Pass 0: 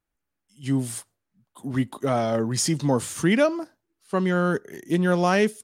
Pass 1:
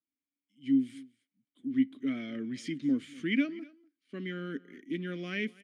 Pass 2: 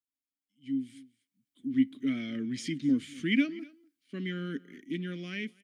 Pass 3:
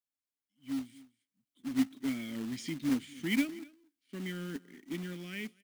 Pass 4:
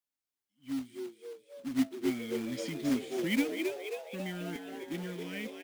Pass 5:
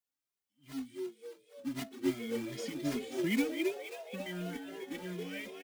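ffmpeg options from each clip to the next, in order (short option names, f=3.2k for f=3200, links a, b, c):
-filter_complex "[0:a]adynamicequalizer=threshold=0.0112:dfrequency=1600:dqfactor=0.88:tfrequency=1600:tqfactor=0.88:attack=5:release=100:ratio=0.375:range=3:mode=boostabove:tftype=bell,asplit=3[a][b][c];[a]bandpass=f=270:t=q:w=8,volume=0dB[d];[b]bandpass=f=2.29k:t=q:w=8,volume=-6dB[e];[c]bandpass=f=3.01k:t=q:w=8,volume=-9dB[f];[d][e][f]amix=inputs=3:normalize=0,aecho=1:1:243:0.0794"
-af "equalizer=f=750:t=o:w=2.9:g=-10,dynaudnorm=f=500:g=5:m=11dB,volume=-4dB"
-af "acrusher=bits=3:mode=log:mix=0:aa=0.000001,volume=-4dB"
-filter_complex "[0:a]asplit=9[a][b][c][d][e][f][g][h][i];[b]adelay=269,afreqshift=100,volume=-5.5dB[j];[c]adelay=538,afreqshift=200,volume=-10.2dB[k];[d]adelay=807,afreqshift=300,volume=-15dB[l];[e]adelay=1076,afreqshift=400,volume=-19.7dB[m];[f]adelay=1345,afreqshift=500,volume=-24.4dB[n];[g]adelay=1614,afreqshift=600,volume=-29.2dB[o];[h]adelay=1883,afreqshift=700,volume=-33.9dB[p];[i]adelay=2152,afreqshift=800,volume=-38.6dB[q];[a][j][k][l][m][n][o][p][q]amix=inputs=9:normalize=0"
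-filter_complex "[0:a]asplit=2[a][b];[b]adelay=2.4,afreqshift=2.7[c];[a][c]amix=inputs=2:normalize=1,volume=1.5dB"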